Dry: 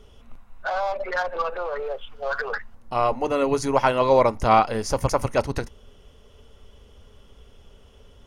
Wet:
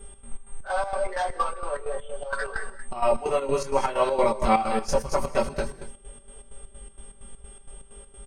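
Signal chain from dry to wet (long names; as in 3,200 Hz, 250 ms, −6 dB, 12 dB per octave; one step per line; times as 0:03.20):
on a send at −8 dB: convolution reverb, pre-delay 3 ms
on the sum: multi-voice chorus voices 6, 0.67 Hz, delay 20 ms, depth 2.3 ms
steady tone 8,500 Hz −49 dBFS
in parallel at −1 dB: downward compressor, threshold −33 dBFS, peak gain reduction 17.5 dB
on the sum: comb filter 5.2 ms, depth 88%
hum with harmonics 400 Hz, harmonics 9, −56 dBFS −4 dB per octave
square-wave tremolo 4.3 Hz, depth 65%, duty 60%
one half of a high-frequency compander decoder only
level −3.5 dB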